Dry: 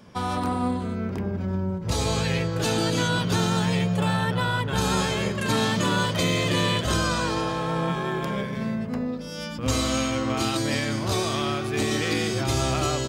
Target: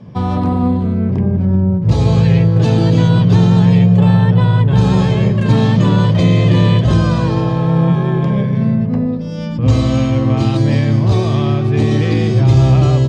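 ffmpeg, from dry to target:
-filter_complex "[0:a]lowpass=4.6k,equalizer=f=130:w=1.3:g=13.5,bandreject=f=1.4k:w=7.3,acrossover=split=910[a][b];[a]acontrast=75[c];[c][b]amix=inputs=2:normalize=0,volume=1dB"

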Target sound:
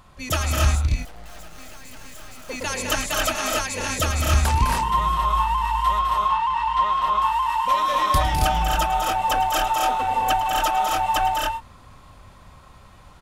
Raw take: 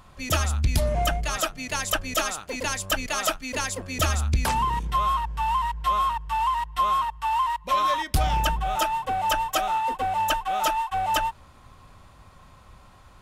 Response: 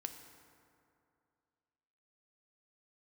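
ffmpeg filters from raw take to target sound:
-filter_complex "[0:a]asettb=1/sr,asplit=3[a][b][c];[a]atrim=end=0.754[d];[b]atrim=start=0.75:end=2.44,asetpts=PTS-STARTPTS,afade=t=in:d=0.004:c=qsin,afade=t=out:st=1.686:d=0.004:c=qsin,aeval=exprs='(tanh(178*val(0)+0.7)-tanh(0.7))/178':c=same[e];[c]atrim=start=2.436[f];[d][e]acrossfade=d=0.004:c1=hsin:c2=qsin[g];[g][f]acrossfade=d=0.004:c1=qsin:c2=hsin,asettb=1/sr,asplit=3[h][i][j];[h]atrim=end=5.994[k];[i]atrim=start=5.99:end=7.02,asetpts=PTS-STARTPTS,afade=t=in:d=0.004:c=qsin,afade=t=out:st=1.026:d=0.004:c=qsin,lowpass=4.7k[l];[j]atrim=start=7.016[m];[k][l]acrossfade=d=0.004:c1=hsin:c2=qsin[n];[n][m]acrossfade=d=0.004:c1=qsin:c2=hsin,aecho=1:1:107|108|206|243|272|296:0.178|0.106|0.501|0.473|0.708|0.447"

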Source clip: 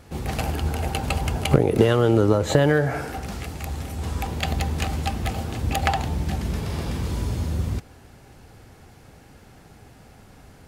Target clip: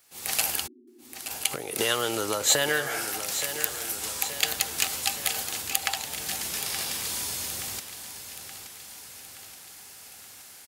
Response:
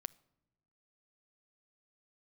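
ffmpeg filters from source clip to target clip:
-filter_complex "[0:a]aderivative,dynaudnorm=f=140:g=3:m=14dB,acrusher=bits=10:mix=0:aa=0.000001,asplit=3[a][b][c];[a]afade=t=out:st=0.66:d=0.02[d];[b]asuperpass=centerf=300:order=20:qfactor=1.8,afade=t=in:st=0.66:d=0.02,afade=t=out:st=1.29:d=0.02[e];[c]afade=t=in:st=1.29:d=0.02[f];[d][e][f]amix=inputs=3:normalize=0,asettb=1/sr,asplit=3[g][h][i];[g]atrim=end=3.334[j];[h]atrim=start=3.33:end=3.91,asetpts=PTS-STARTPTS,afade=t=in:d=0.004:c=qsin,afade=t=out:st=0.576:d=0.004:c=qsin,acrusher=bits=3:mode=log:mix=0:aa=0.000001[k];[i]atrim=start=3.906[l];[j][k]acrossfade=d=0.004:c1=hsin:c2=qsin[m];[m][l]acrossfade=d=0.004:c1=qsin:c2=hsin,aecho=1:1:874|1748|2622|3496|4370|5244:0.282|0.158|0.0884|0.0495|0.0277|0.0155,volume=-1dB"

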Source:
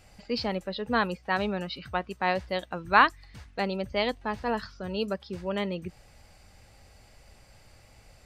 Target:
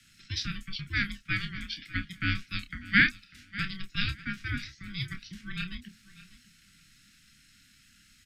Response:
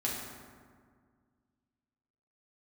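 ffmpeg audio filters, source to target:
-filter_complex "[0:a]acrossover=split=140|370|1300[a][b][c][d];[b]acompressor=threshold=-44dB:ratio=6[e];[a][e][c][d]amix=inputs=4:normalize=0,aeval=exprs='val(0)*sin(2*PI*600*n/s)':c=same,afreqshift=-27,asuperstop=centerf=650:order=12:qfactor=0.53,asplit=2[f][g];[g]adelay=29,volume=-9.5dB[h];[f][h]amix=inputs=2:normalize=0,aecho=1:1:596|1192:0.126|0.0227,volume=3.5dB"

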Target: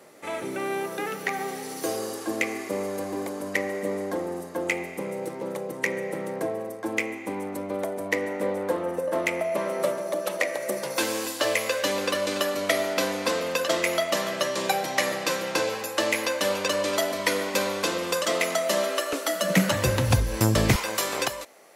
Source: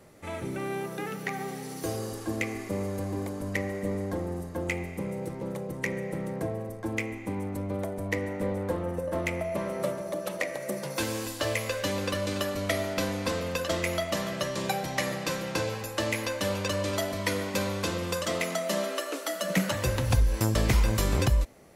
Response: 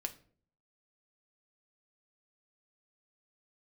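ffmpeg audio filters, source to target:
-af "asetnsamples=n=441:p=0,asendcmd='19.13 highpass f 88;20.76 highpass f 540',highpass=310,volume=5.5dB"

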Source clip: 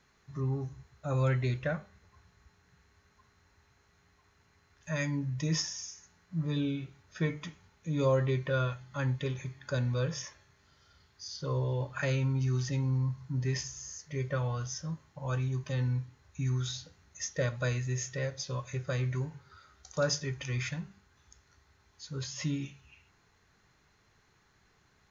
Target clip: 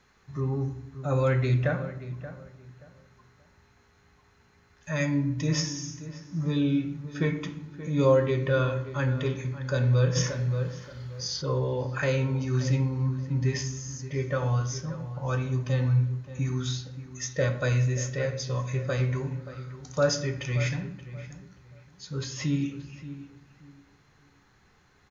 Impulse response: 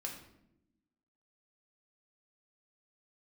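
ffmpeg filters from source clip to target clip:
-filter_complex "[0:a]asplit=2[a][b];[b]adelay=578,lowpass=f=2.2k:p=1,volume=-13.5dB,asplit=2[c][d];[d]adelay=578,lowpass=f=2.2k:p=1,volume=0.26,asplit=2[e][f];[f]adelay=578,lowpass=f=2.2k:p=1,volume=0.26[g];[a][c][e][g]amix=inputs=4:normalize=0,asplit=2[h][i];[1:a]atrim=start_sample=2205,highshelf=f=5.3k:g=-12[j];[i][j]afir=irnorm=-1:irlink=0,volume=1.5dB[k];[h][k]amix=inputs=2:normalize=0,asplit=3[l][m][n];[l]afade=t=out:st=10.15:d=0.02[o];[m]acontrast=90,afade=t=in:st=10.15:d=0.02,afade=t=out:st=11.41:d=0.02[p];[n]afade=t=in:st=11.41:d=0.02[q];[o][p][q]amix=inputs=3:normalize=0"

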